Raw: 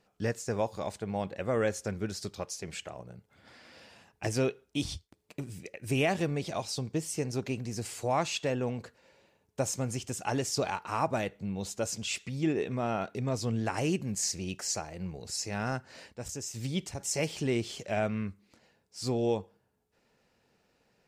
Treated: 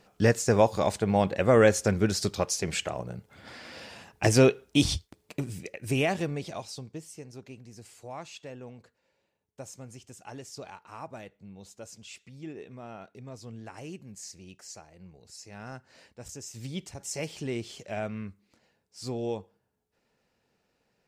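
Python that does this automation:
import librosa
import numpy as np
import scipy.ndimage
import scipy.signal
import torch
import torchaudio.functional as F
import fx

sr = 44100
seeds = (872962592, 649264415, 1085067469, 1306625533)

y = fx.gain(x, sr, db=fx.line((4.93, 9.5), (6.46, -2.0), (7.24, -12.0), (15.38, -12.0), (16.31, -3.5)))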